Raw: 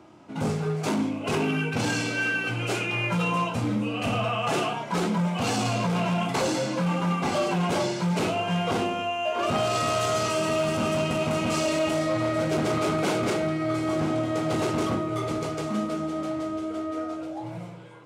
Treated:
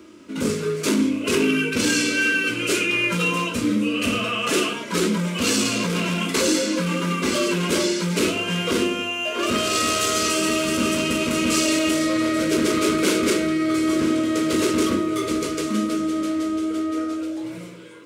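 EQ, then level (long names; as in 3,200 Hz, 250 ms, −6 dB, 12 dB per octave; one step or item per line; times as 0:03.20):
high-shelf EQ 7,900 Hz +7.5 dB
phaser with its sweep stopped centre 320 Hz, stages 4
+8.0 dB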